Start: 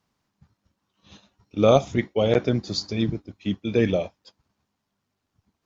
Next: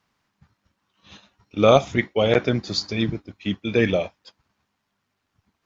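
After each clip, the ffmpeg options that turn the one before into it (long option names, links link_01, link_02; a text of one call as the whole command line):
ffmpeg -i in.wav -af "equalizer=frequency=1900:width=0.58:gain=7.5" out.wav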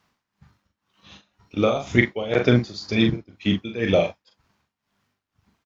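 ffmpeg -i in.wav -filter_complex "[0:a]tremolo=f=2:d=0.86,asplit=2[link_01][link_02];[link_02]adelay=41,volume=-5.5dB[link_03];[link_01][link_03]amix=inputs=2:normalize=0,volume=4dB" out.wav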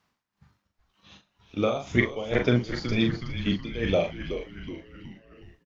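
ffmpeg -i in.wav -filter_complex "[0:a]asplit=7[link_01][link_02][link_03][link_04][link_05][link_06][link_07];[link_02]adelay=371,afreqshift=-130,volume=-9dB[link_08];[link_03]adelay=742,afreqshift=-260,volume=-14.5dB[link_09];[link_04]adelay=1113,afreqshift=-390,volume=-20dB[link_10];[link_05]adelay=1484,afreqshift=-520,volume=-25.5dB[link_11];[link_06]adelay=1855,afreqshift=-650,volume=-31.1dB[link_12];[link_07]adelay=2226,afreqshift=-780,volume=-36.6dB[link_13];[link_01][link_08][link_09][link_10][link_11][link_12][link_13]amix=inputs=7:normalize=0,volume=-5dB" out.wav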